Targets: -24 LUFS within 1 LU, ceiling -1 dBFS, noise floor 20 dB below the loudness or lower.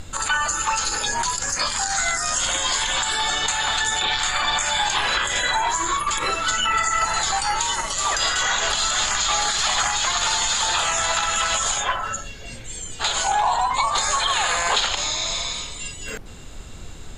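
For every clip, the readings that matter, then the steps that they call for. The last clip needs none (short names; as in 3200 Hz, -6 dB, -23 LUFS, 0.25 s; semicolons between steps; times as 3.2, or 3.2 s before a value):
noise floor -36 dBFS; noise floor target -41 dBFS; loudness -20.5 LUFS; peak -7.5 dBFS; loudness target -24.0 LUFS
-> noise print and reduce 6 dB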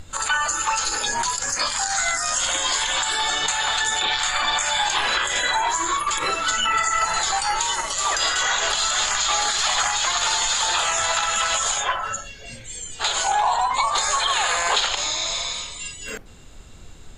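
noise floor -41 dBFS; loudness -20.5 LUFS; peak -7.5 dBFS; loudness target -24.0 LUFS
-> gain -3.5 dB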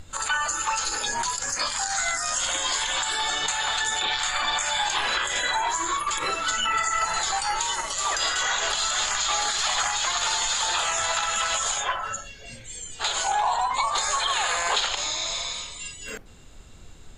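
loudness -24.0 LUFS; peak -11.0 dBFS; noise floor -44 dBFS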